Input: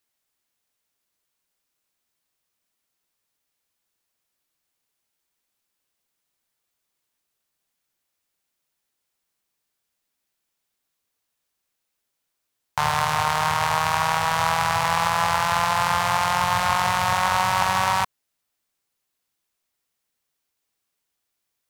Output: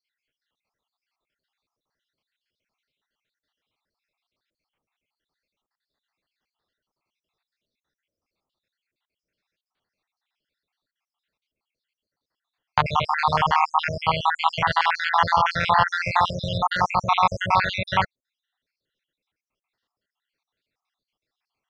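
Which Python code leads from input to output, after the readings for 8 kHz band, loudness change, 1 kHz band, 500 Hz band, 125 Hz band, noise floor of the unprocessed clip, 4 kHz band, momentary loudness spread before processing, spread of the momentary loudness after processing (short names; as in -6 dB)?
under -15 dB, -0.5 dB, 0.0 dB, 0.0 dB, +1.0 dB, -79 dBFS, -1.5 dB, 2 LU, 5 LU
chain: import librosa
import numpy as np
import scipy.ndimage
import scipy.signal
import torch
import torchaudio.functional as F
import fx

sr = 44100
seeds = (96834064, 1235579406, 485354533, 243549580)

y = fx.spec_dropout(x, sr, seeds[0], share_pct=68)
y = scipy.signal.sosfilt(scipy.signal.butter(4, 4300.0, 'lowpass', fs=sr, output='sos'), y)
y = F.gain(torch.from_numpy(y), 5.5).numpy()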